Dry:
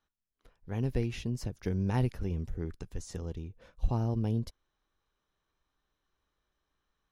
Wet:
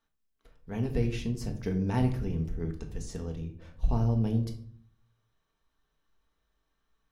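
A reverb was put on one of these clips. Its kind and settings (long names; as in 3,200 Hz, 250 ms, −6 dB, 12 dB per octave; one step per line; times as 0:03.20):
rectangular room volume 630 cubic metres, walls furnished, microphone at 1.6 metres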